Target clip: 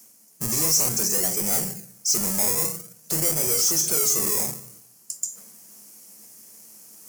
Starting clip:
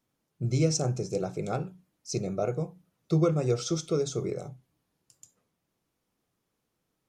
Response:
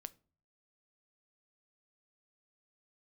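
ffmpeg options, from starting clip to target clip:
-filter_complex "[0:a]equalizer=frequency=210:width_type=o:width=0.24:gain=14[link_01];[1:a]atrim=start_sample=2205,asetrate=33075,aresample=44100[link_02];[link_01][link_02]afir=irnorm=-1:irlink=0,asplit=2[link_03][link_04];[link_04]highpass=frequency=720:poles=1,volume=33dB,asoftclip=type=tanh:threshold=-18dB[link_05];[link_03][link_05]amix=inputs=2:normalize=0,lowpass=frequency=3100:poles=1,volume=-6dB,acrossover=split=140|1400[link_06][link_07][link_08];[link_07]acrusher=samples=23:mix=1:aa=0.000001:lfo=1:lforange=13.8:lforate=0.51[link_09];[link_06][link_09][link_08]amix=inputs=3:normalize=0,aexciter=amount=9.2:drive=8.1:freq=5400,areverse,acompressor=mode=upward:threshold=-31dB:ratio=2.5,areverse,bandreject=frequency=3700:width=23,volume=-6.5dB"

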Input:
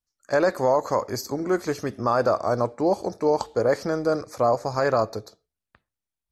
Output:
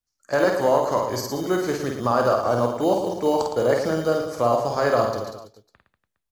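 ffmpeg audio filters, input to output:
ffmpeg -i in.wav -filter_complex "[0:a]acrossover=split=330[link_01][link_02];[link_01]acrusher=samples=13:mix=1:aa=0.000001[link_03];[link_03][link_02]amix=inputs=2:normalize=0,aecho=1:1:50|112.5|190.6|288.3|410.4:0.631|0.398|0.251|0.158|0.1" out.wav

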